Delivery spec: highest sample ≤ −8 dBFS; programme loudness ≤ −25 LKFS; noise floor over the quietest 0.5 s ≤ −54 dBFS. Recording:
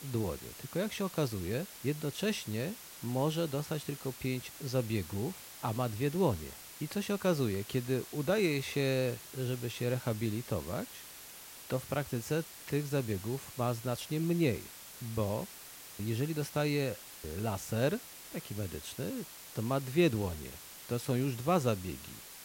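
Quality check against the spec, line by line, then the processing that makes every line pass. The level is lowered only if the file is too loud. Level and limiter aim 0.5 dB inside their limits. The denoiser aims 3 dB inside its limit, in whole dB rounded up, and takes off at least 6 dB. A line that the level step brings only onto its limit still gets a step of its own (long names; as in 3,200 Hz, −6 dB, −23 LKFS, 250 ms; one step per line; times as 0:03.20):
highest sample −16.0 dBFS: in spec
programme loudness −35.0 LKFS: in spec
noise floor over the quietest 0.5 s −50 dBFS: out of spec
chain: broadband denoise 7 dB, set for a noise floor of −50 dBFS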